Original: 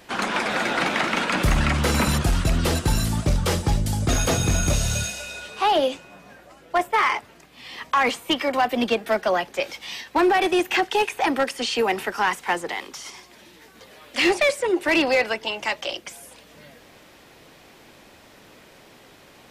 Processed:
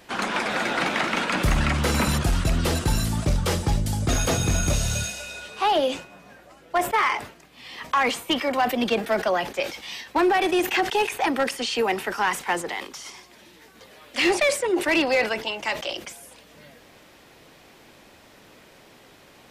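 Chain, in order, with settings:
level that may fall only so fast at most 130 dB per second
level −1.5 dB

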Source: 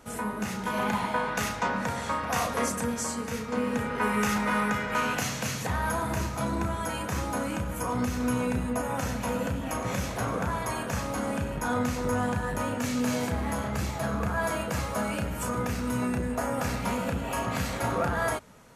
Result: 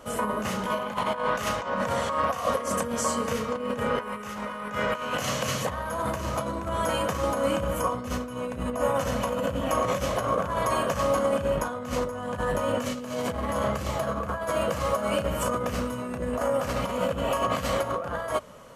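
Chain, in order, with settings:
compressor whose output falls as the input rises −31 dBFS, ratio −0.5
hollow resonant body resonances 570/1,100/3,000 Hz, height 12 dB, ringing for 25 ms

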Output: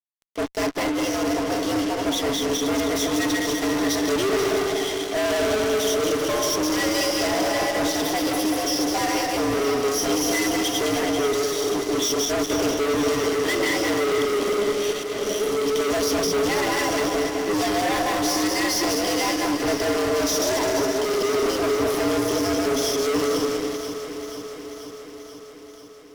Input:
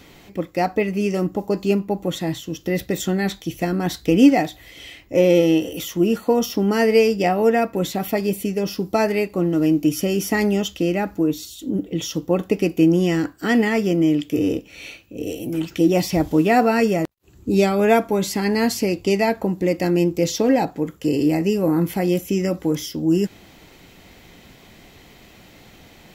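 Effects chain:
feedback delay that plays each chunk backwards 103 ms, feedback 62%, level −3 dB
EQ curve with evenly spaced ripples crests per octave 1.2, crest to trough 13 dB
frequency shifter +110 Hz
parametric band 4,800 Hz +12 dB 0.59 octaves
fuzz pedal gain 26 dB, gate −31 dBFS
delay that swaps between a low-pass and a high-pass 243 ms, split 1,500 Hz, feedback 82%, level −8 dB
level −8.5 dB

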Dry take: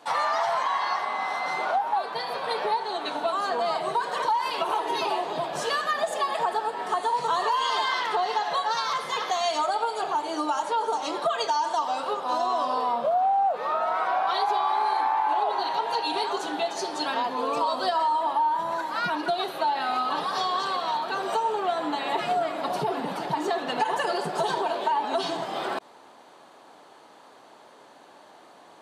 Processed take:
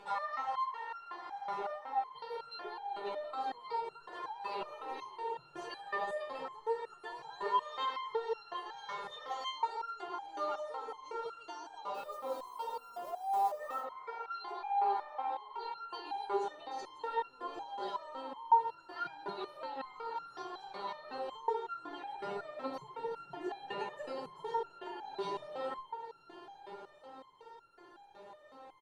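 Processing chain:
comb filter 2.2 ms, depth 62%
in parallel at −2.5 dB: downward compressor 12 to 1, threshold −36 dBFS, peak gain reduction 20 dB
on the sum: tape delay 161 ms, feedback 87%, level −17 dB, low-pass 3,200 Hz
upward compression, threshold −35 dBFS
RIAA equalisation playback
mains-hum notches 50/100/150/200/250/300/350/400 Hz
feedback delay with all-pass diffusion 1,048 ms, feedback 41%, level −10.5 dB
0:11.94–0:13.80: log-companded quantiser 6 bits
step-sequenced resonator 5.4 Hz 200–1,400 Hz

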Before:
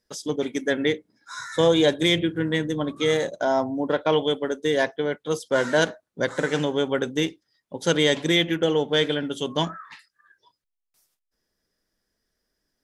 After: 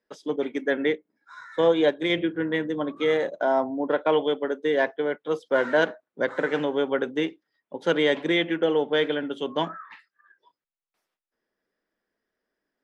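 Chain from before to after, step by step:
three-way crossover with the lows and the highs turned down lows −17 dB, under 210 Hz, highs −21 dB, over 3,100 Hz
0:00.95–0:02.10: expander for the loud parts 1.5 to 1, over −29 dBFS

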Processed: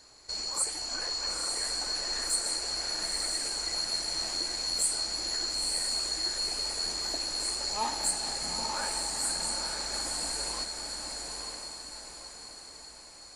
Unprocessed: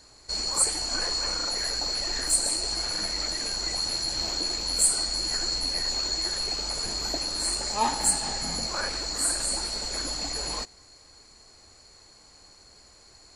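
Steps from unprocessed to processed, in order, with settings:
low-shelf EQ 230 Hz −7.5 dB
in parallel at +1.5 dB: downward compressor, threshold −36 dBFS, peak gain reduction 18 dB
on the sum: feedback delay with all-pass diffusion 943 ms, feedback 47%, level −3 dB
level −8.5 dB

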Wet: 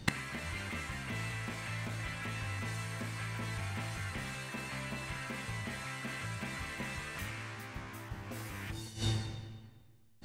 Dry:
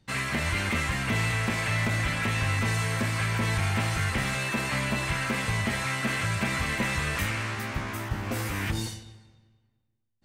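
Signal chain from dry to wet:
gate with flip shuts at −28 dBFS, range −28 dB
hum removal 73.25 Hz, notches 38
level +16 dB

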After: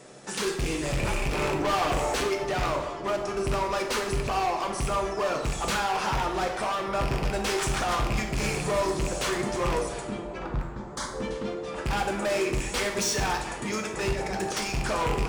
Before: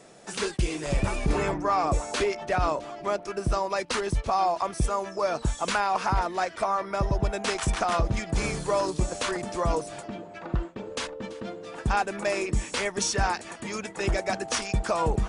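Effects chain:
loose part that buzzes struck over −29 dBFS, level −17 dBFS
notch filter 680 Hz, Q 12
0:01.59–0:02.16: parametric band 550 Hz +8.5 dB 2.3 octaves
0:10.47–0:11.14: phaser with its sweep stopped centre 1,100 Hz, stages 4
0:14.13–0:14.57: compressor whose output falls as the input rises −32 dBFS, ratio −0.5
gain into a clipping stage and back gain 28 dB
on a send: delay with a low-pass on its return 750 ms, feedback 78%, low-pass 1,100 Hz, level −16 dB
on the sum: dense smooth reverb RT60 0.92 s, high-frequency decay 0.75×, DRR 2.5 dB
level +2 dB

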